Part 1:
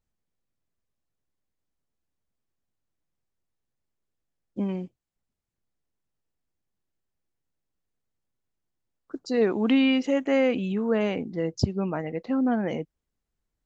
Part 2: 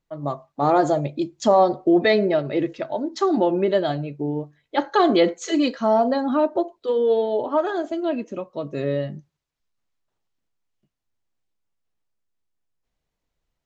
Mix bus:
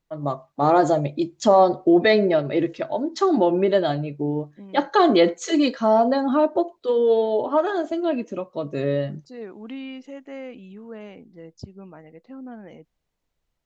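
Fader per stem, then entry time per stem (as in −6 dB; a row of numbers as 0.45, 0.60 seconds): −14.0, +1.0 decibels; 0.00, 0.00 seconds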